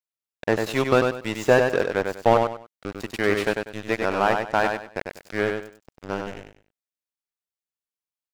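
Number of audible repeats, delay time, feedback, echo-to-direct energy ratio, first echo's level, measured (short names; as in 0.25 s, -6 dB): 3, 97 ms, 26%, -4.5 dB, -5.0 dB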